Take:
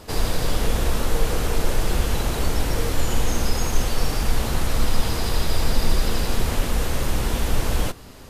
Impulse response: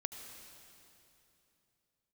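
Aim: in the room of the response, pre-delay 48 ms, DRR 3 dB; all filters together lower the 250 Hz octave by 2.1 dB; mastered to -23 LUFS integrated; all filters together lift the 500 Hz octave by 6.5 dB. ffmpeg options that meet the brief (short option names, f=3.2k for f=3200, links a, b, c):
-filter_complex "[0:a]equalizer=f=250:t=o:g=-6,equalizer=f=500:t=o:g=9,asplit=2[a][b];[1:a]atrim=start_sample=2205,adelay=48[c];[b][c]afir=irnorm=-1:irlink=0,volume=-2dB[d];[a][d]amix=inputs=2:normalize=0,volume=-1dB"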